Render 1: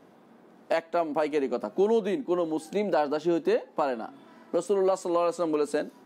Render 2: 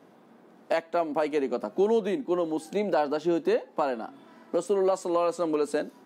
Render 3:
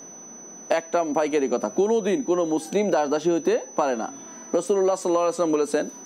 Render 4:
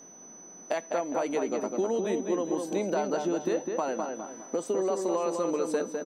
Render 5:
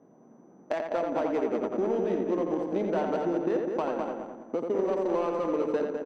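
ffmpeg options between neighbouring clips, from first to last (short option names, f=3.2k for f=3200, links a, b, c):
-af "highpass=95"
-af "acompressor=threshold=-25dB:ratio=6,aeval=exprs='val(0)+0.00398*sin(2*PI*6000*n/s)':c=same,volume=7.5dB"
-filter_complex "[0:a]asplit=2[a][b];[b]adelay=204,lowpass=f=2.4k:p=1,volume=-4dB,asplit=2[c][d];[d]adelay=204,lowpass=f=2.4k:p=1,volume=0.35,asplit=2[e][f];[f]adelay=204,lowpass=f=2.4k:p=1,volume=0.35,asplit=2[g][h];[h]adelay=204,lowpass=f=2.4k:p=1,volume=0.35[i];[a][c][e][g][i]amix=inputs=5:normalize=0,volume=-8dB"
-filter_complex "[0:a]adynamicsmooth=sensitivity=2:basefreq=830,asplit=2[a][b];[b]adelay=86,lowpass=f=3.4k:p=1,volume=-4dB,asplit=2[c][d];[d]adelay=86,lowpass=f=3.4k:p=1,volume=0.33,asplit=2[e][f];[f]adelay=86,lowpass=f=3.4k:p=1,volume=0.33,asplit=2[g][h];[h]adelay=86,lowpass=f=3.4k:p=1,volume=0.33[i];[a][c][e][g][i]amix=inputs=5:normalize=0"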